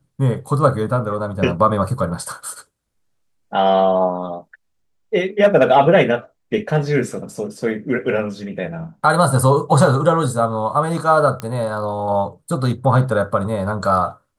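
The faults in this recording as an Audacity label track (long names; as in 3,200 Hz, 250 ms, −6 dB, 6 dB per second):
11.400000	11.400000	click −12 dBFS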